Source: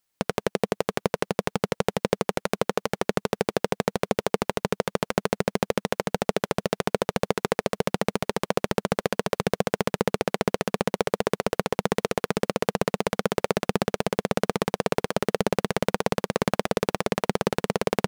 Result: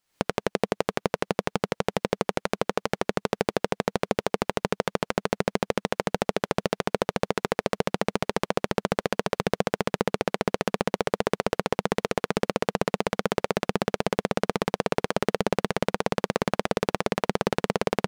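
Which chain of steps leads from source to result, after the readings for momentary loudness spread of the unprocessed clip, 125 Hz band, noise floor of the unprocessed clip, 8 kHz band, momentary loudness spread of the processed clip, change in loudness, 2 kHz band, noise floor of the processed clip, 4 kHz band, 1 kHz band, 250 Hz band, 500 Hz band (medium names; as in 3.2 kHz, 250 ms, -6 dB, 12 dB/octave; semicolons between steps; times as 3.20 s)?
2 LU, -2.0 dB, -78 dBFS, -3.0 dB, 2 LU, -1.0 dB, 0.0 dB, -79 dBFS, -1.0 dB, 0.0 dB, -1.0 dB, -1.0 dB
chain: recorder AGC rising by 67 dB/s; treble shelf 9 kHz -9.5 dB; peak limiter -5.5 dBFS, peak gain reduction 11.5 dB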